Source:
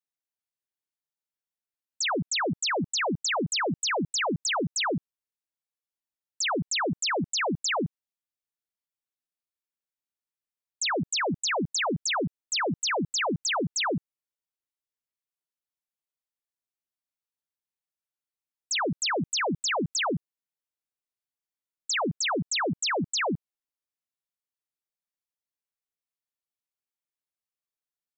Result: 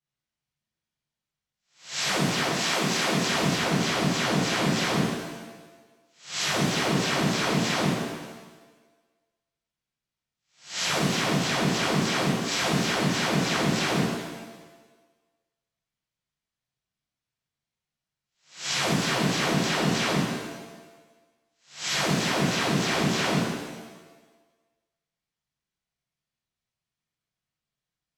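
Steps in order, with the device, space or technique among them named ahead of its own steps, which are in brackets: spectral swells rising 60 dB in 0.38 s; 2.44–3.15 HPF 420 Hz -> 190 Hz 12 dB/oct; jukebox (LPF 5800 Hz 12 dB/oct; resonant low shelf 210 Hz +9.5 dB, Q 1.5; compressor 4:1, threshold -31 dBFS, peak gain reduction 12.5 dB); shimmer reverb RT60 1.2 s, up +7 st, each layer -8 dB, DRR -8 dB; gain -2 dB

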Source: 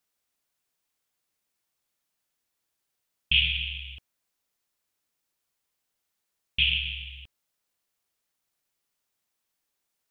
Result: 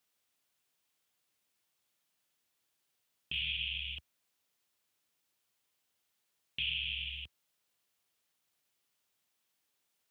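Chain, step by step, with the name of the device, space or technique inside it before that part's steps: broadcast voice chain (HPF 72 Hz 24 dB/oct; de-esser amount 65%; compressor 3:1, threshold -36 dBFS, peak gain reduction 10.5 dB; bell 3100 Hz +3.5 dB 0.77 oct; limiter -25 dBFS, peak gain reduction 8.5 dB)

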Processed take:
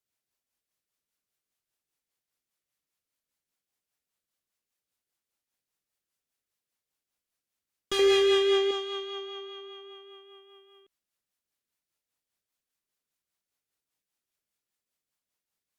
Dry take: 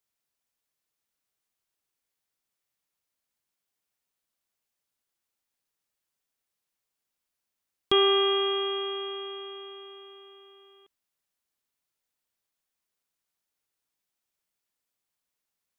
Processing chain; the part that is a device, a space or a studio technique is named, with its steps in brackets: overdriven rotary cabinet (tube stage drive 26 dB, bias 0.45; rotary speaker horn 5 Hz); 7.99–8.71 ten-band EQ 125 Hz +6 dB, 250 Hz +5 dB, 500 Hz +10 dB, 1000 Hz -4 dB, 2000 Hz +8 dB; gain +2.5 dB

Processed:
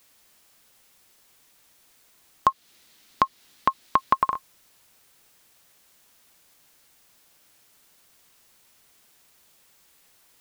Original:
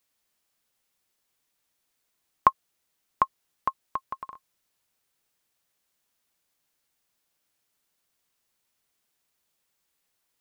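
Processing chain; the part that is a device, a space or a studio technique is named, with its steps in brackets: loud club master (compressor 2:1, threshold -27 dBFS, peak gain reduction 8.5 dB; hard clip -10.5 dBFS, distortion -20 dB; maximiser +22 dB); 2.47–4.14 ten-band EQ 250 Hz +6 dB, 2000 Hz +3 dB, 4000 Hz +7 dB; gain -5 dB

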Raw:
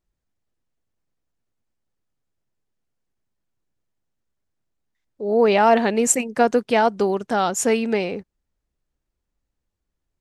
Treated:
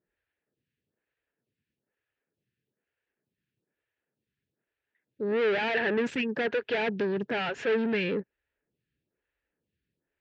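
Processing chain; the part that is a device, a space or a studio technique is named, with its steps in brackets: vibe pedal into a guitar amplifier (photocell phaser 1.1 Hz; tube stage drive 31 dB, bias 0.3; speaker cabinet 96–3800 Hz, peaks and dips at 130 Hz +4 dB, 440 Hz +5 dB, 750 Hz -6 dB, 1100 Hz -9 dB, 1700 Hz +10 dB, 2600 Hz +6 dB); gain +4 dB

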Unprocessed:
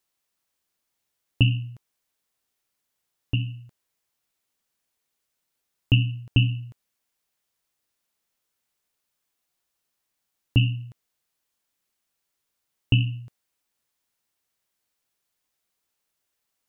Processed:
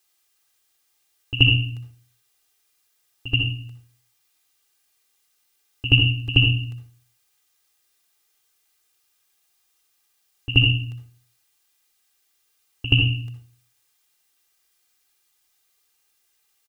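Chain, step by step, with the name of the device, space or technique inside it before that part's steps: tilt shelf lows -5 dB, about 1100 Hz; microphone above a desk (comb 2.5 ms, depth 68%; reverb RT60 0.50 s, pre-delay 57 ms, DRR 4.5 dB); pre-echo 79 ms -13.5 dB; gain +4 dB

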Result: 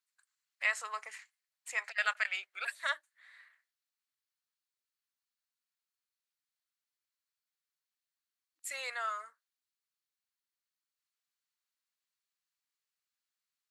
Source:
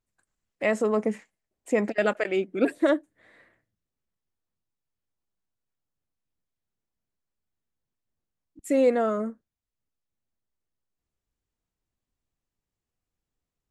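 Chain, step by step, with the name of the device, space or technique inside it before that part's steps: 1.78–2.97 HPF 420 Hz 24 dB/oct; headphones lying on a table (HPF 1200 Hz 24 dB/oct; bell 4300 Hz +6 dB 0.29 oct)

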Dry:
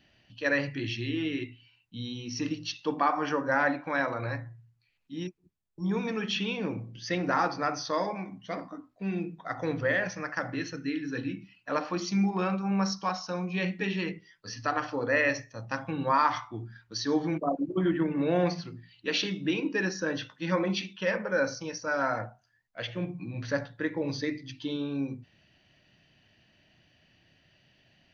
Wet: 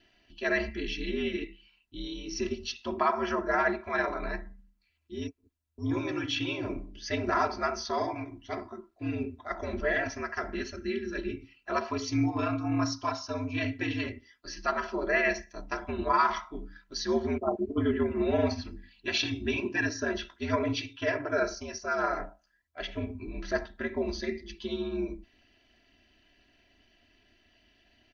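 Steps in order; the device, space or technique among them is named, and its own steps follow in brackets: 18.5–19.85 comb 1.2 ms, depth 51%; ring-modulated robot voice (ring modulator 79 Hz; comb 3 ms, depth 83%)

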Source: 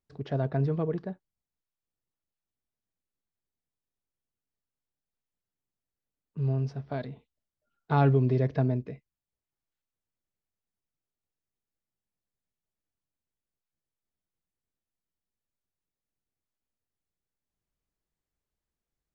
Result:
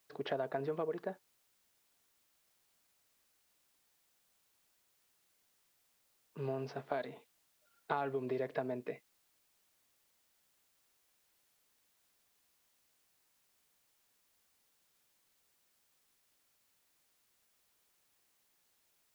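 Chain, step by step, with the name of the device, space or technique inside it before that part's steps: baby monitor (BPF 460–3800 Hz; compressor, threshold -40 dBFS, peak gain reduction 16.5 dB; white noise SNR 29 dB); gain +6.5 dB

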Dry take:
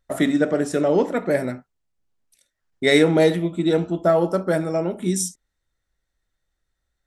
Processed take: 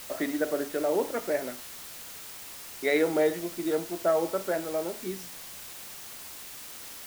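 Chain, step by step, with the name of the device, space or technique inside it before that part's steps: wax cylinder (BPF 350–2400 Hz; wow and flutter; white noise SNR 12 dB); gain -6.5 dB

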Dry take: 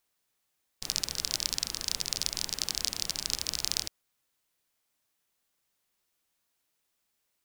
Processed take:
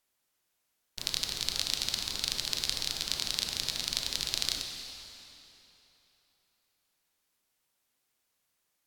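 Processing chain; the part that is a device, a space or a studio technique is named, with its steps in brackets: slowed and reverbed (varispeed -16%; reverb RT60 3.3 s, pre-delay 21 ms, DRR 3.5 dB); gain -1.5 dB

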